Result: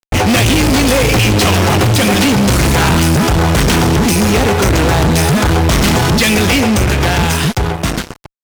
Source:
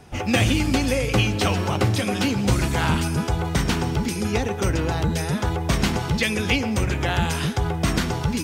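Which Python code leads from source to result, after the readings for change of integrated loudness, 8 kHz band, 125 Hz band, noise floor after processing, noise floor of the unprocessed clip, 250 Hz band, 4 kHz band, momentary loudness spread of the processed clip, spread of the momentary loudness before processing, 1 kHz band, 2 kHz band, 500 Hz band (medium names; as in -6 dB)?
+11.0 dB, +13.5 dB, +10.0 dB, -37 dBFS, -29 dBFS, +10.5 dB, +12.0 dB, 3 LU, 4 LU, +11.5 dB, +11.0 dB, +11.0 dB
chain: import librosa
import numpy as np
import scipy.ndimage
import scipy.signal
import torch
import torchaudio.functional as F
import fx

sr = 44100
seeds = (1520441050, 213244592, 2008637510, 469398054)

y = fx.fade_out_tail(x, sr, length_s=2.47)
y = fx.fuzz(y, sr, gain_db=34.0, gate_db=-38.0)
y = y * librosa.db_to_amplitude(4.0)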